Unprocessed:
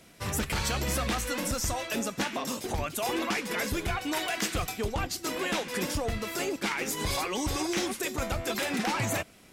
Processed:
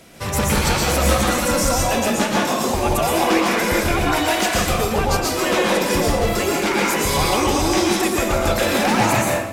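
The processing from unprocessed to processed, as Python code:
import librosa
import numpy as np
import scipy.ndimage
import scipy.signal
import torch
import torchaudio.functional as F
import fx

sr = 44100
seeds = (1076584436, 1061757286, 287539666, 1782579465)

p1 = fx.peak_eq(x, sr, hz=590.0, db=3.0, octaves=1.6)
p2 = 10.0 ** (-28.5 / 20.0) * np.tanh(p1 / 10.0 ** (-28.5 / 20.0))
p3 = p1 + (p2 * 10.0 ** (-5.5 / 20.0))
p4 = fx.rev_plate(p3, sr, seeds[0], rt60_s=0.92, hf_ratio=0.65, predelay_ms=105, drr_db=-3.0)
y = p4 * 10.0 ** (4.0 / 20.0)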